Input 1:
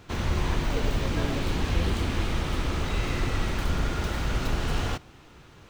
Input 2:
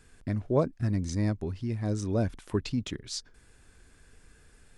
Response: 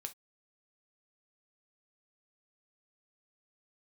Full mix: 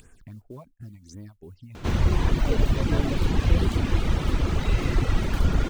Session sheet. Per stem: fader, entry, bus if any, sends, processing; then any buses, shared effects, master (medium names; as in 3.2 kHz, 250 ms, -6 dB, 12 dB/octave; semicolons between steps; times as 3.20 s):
+1.0 dB, 1.75 s, no send, none
-17.5 dB, 0.00 s, no send, bass shelf 450 Hz -6.5 dB; phase shifter stages 6, 2.8 Hz, lowest notch 380–4900 Hz; modulation noise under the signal 23 dB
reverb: none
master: reverb removal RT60 0.88 s; bass shelf 490 Hz +6.5 dB; upward compressor, threshold -34 dBFS